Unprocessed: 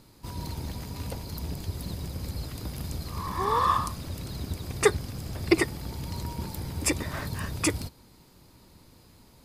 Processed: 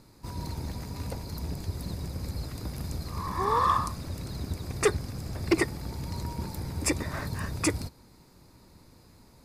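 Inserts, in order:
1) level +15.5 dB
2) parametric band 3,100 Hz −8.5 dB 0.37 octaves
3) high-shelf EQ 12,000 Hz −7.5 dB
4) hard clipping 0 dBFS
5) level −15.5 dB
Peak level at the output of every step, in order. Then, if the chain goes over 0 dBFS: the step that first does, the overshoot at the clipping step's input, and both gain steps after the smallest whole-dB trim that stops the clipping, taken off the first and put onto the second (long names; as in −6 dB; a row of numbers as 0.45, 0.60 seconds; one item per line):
+9.0, +8.5, +8.5, 0.0, −15.5 dBFS
step 1, 8.5 dB
step 1 +6.5 dB, step 5 −6.5 dB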